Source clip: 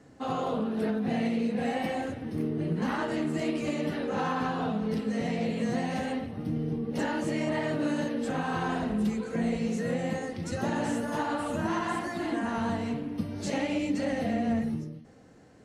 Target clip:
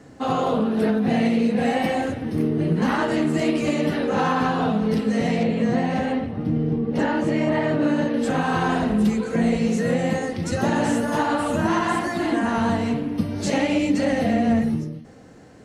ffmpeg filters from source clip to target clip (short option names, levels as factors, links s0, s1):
-filter_complex "[0:a]asettb=1/sr,asplit=3[s0][s1][s2];[s0]atrim=end=5.434[s3];[s1]atrim=start=5.43:end=8.14,asetpts=PTS-STARTPTS,afade=t=in:d=0.004:c=qsin,afade=t=out:st=2.706:d=0.004:c=qsin,lowpass=f=2400:p=1[s4];[s2]atrim=start=8.136[s5];[s3][s4]acrossfade=d=0.004:c1=hsin:c2=qsin[s6];[s6][s5]acrossfade=d=0.004:c1=qsin:c2=hsin,volume=2.66"